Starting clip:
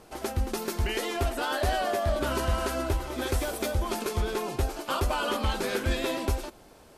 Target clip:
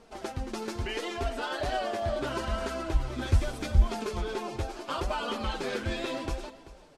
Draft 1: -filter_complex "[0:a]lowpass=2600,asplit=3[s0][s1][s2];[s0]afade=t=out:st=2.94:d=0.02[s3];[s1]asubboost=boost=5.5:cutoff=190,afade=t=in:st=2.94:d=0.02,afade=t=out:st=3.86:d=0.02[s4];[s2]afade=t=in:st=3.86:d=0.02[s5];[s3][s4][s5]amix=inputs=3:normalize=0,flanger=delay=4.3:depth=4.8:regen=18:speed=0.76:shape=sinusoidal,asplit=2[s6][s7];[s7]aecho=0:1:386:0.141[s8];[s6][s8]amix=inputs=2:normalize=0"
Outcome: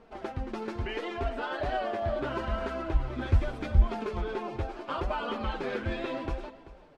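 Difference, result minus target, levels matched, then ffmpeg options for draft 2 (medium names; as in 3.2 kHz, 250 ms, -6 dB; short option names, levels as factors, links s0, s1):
8 kHz band -14.5 dB
-filter_complex "[0:a]lowpass=6900,asplit=3[s0][s1][s2];[s0]afade=t=out:st=2.94:d=0.02[s3];[s1]asubboost=boost=5.5:cutoff=190,afade=t=in:st=2.94:d=0.02,afade=t=out:st=3.86:d=0.02[s4];[s2]afade=t=in:st=3.86:d=0.02[s5];[s3][s4][s5]amix=inputs=3:normalize=0,flanger=delay=4.3:depth=4.8:regen=18:speed=0.76:shape=sinusoidal,asplit=2[s6][s7];[s7]aecho=0:1:386:0.141[s8];[s6][s8]amix=inputs=2:normalize=0"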